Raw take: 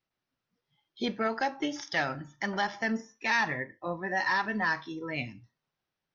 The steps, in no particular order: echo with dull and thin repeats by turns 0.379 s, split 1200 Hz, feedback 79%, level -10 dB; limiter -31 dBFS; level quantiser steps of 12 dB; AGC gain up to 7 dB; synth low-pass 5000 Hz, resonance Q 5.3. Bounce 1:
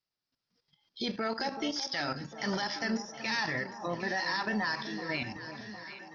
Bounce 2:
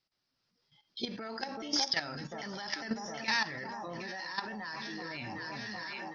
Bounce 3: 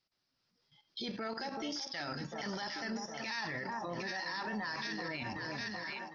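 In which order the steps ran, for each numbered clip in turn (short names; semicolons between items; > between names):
level quantiser > synth low-pass > limiter > AGC > echo with dull and thin repeats by turns; echo with dull and thin repeats by turns > limiter > synth low-pass > level quantiser > AGC; synth low-pass > level quantiser > echo with dull and thin repeats by turns > AGC > limiter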